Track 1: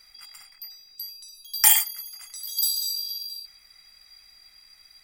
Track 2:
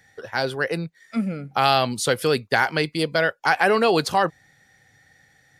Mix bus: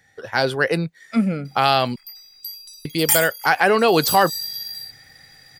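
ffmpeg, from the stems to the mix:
-filter_complex "[0:a]adelay=1450,volume=-4.5dB[a];[1:a]volume=-2dB,asplit=3[b][c][d];[b]atrim=end=1.96,asetpts=PTS-STARTPTS,afade=t=out:st=1.956:d=0.004:c=hsin[e];[c]atrim=start=1.96:end=2.85,asetpts=PTS-STARTPTS,volume=0[f];[d]atrim=start=2.85,asetpts=PTS-STARTPTS,afade=t=in:d=0.004:c=hsin[g];[e][f][g]concat=n=3:v=0:a=1,asplit=2[h][i];[i]apad=whole_len=285970[j];[a][j]sidechaincompress=threshold=-23dB:ratio=8:attack=16:release=215[k];[k][h]amix=inputs=2:normalize=0,dynaudnorm=f=150:g=3:m=7.5dB"

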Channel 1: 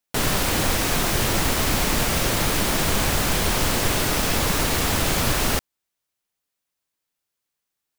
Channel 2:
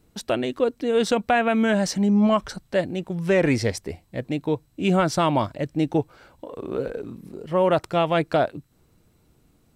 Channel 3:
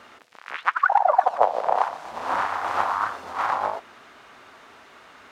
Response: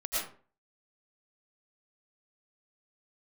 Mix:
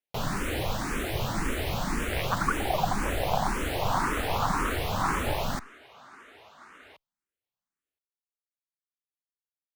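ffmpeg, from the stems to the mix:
-filter_complex "[0:a]highshelf=f=4.3k:g=-10,volume=-4dB[a];[2:a]agate=range=-33dB:threshold=-46dB:ratio=3:detection=peak,acompressor=threshold=-26dB:ratio=6,adelay=1650,volume=2dB[b];[a][b]amix=inputs=2:normalize=0,equalizer=f=5.2k:t=o:w=0.54:g=-3.5,asplit=2[c][d];[d]afreqshift=1.9[e];[c][e]amix=inputs=2:normalize=1"

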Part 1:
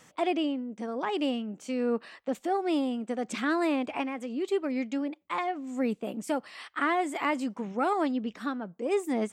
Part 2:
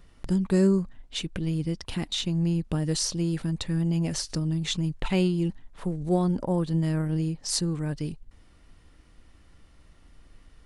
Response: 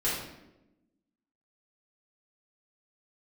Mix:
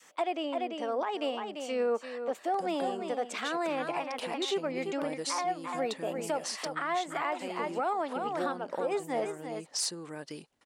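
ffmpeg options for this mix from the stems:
-filter_complex "[0:a]volume=1dB,asplit=2[a][b];[b]volume=-9dB[c];[1:a]acompressor=threshold=-29dB:ratio=16,asoftclip=type=hard:threshold=-24.5dB,adelay=2300,volume=1.5dB[d];[c]aecho=0:1:343:1[e];[a][d][e]amix=inputs=3:normalize=0,highpass=450,adynamicequalizer=threshold=0.00891:dfrequency=670:dqfactor=0.75:tfrequency=670:tqfactor=0.75:attack=5:release=100:ratio=0.375:range=3:mode=boostabove:tftype=bell,alimiter=limit=-22dB:level=0:latency=1:release=447"

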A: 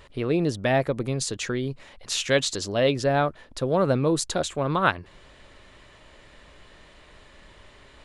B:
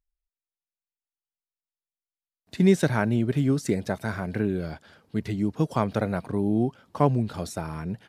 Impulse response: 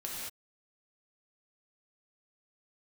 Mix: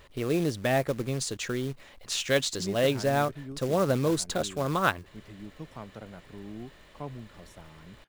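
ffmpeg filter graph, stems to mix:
-filter_complex "[0:a]bandreject=f=920:w=20,acrusher=bits=4:mode=log:mix=0:aa=0.000001,volume=-3.5dB[a];[1:a]volume=-18dB[b];[a][b]amix=inputs=2:normalize=0"

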